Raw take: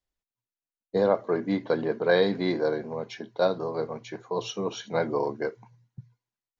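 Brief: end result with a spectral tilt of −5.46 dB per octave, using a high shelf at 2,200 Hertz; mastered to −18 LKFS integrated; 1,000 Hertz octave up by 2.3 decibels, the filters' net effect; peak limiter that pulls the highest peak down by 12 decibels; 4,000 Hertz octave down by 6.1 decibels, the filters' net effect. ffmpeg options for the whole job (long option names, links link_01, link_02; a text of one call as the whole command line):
ffmpeg -i in.wav -af "equalizer=frequency=1000:width_type=o:gain=4,highshelf=frequency=2200:gain=-4.5,equalizer=frequency=4000:width_type=o:gain=-3.5,volume=14dB,alimiter=limit=-6.5dB:level=0:latency=1" out.wav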